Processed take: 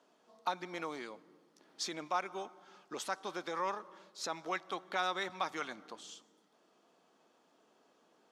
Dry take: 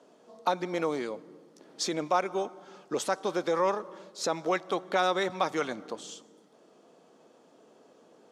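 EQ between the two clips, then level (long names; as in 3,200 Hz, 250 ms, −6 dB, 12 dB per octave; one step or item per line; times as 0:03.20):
octave-band graphic EQ 125/250/500/8,000 Hz −10/−4/−9/−4 dB
−4.5 dB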